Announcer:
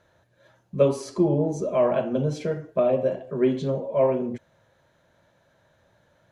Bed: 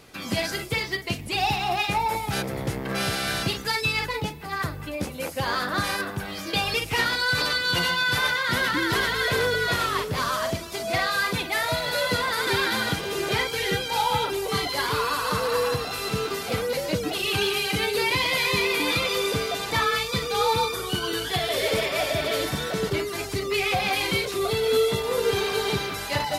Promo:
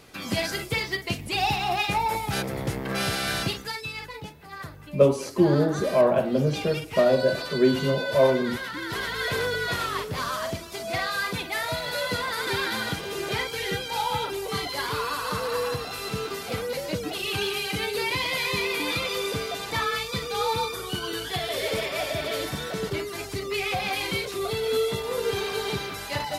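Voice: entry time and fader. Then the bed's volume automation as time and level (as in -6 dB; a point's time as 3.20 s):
4.20 s, +1.5 dB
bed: 3.43 s -0.5 dB
3.84 s -10 dB
8.72 s -10 dB
9.26 s -3.5 dB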